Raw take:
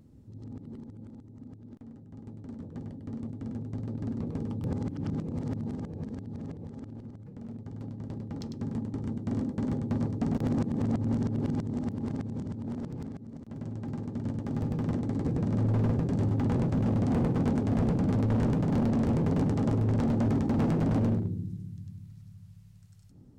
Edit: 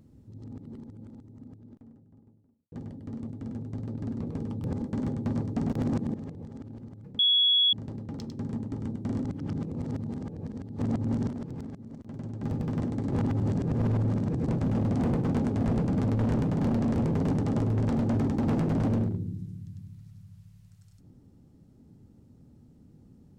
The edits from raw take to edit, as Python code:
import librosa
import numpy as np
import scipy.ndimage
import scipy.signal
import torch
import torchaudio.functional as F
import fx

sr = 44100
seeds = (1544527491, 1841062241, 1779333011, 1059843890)

y = fx.studio_fade_out(x, sr, start_s=1.19, length_s=1.53)
y = fx.edit(y, sr, fx.swap(start_s=4.82, length_s=1.54, other_s=9.47, other_length_s=1.32),
    fx.bleep(start_s=7.41, length_s=0.54, hz=3360.0, db=-19.0),
    fx.cut(start_s=11.29, length_s=1.42),
    fx.cut(start_s=13.85, length_s=0.69),
    fx.reverse_span(start_s=15.23, length_s=1.36), tone=tone)